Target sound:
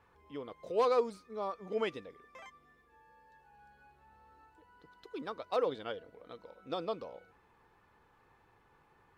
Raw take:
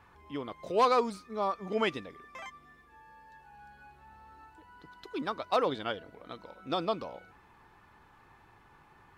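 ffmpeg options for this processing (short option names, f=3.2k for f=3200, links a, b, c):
-af "equalizer=f=480:t=o:w=0.41:g=8.5,volume=-8dB"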